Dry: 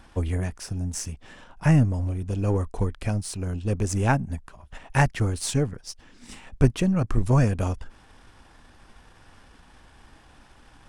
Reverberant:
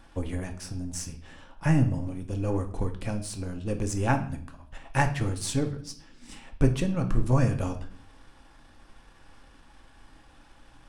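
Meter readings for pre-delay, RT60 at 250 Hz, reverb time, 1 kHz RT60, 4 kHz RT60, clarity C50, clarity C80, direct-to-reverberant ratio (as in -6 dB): 3 ms, 0.85 s, 0.55 s, 0.50 s, 0.50 s, 11.5 dB, 15.5 dB, 5.5 dB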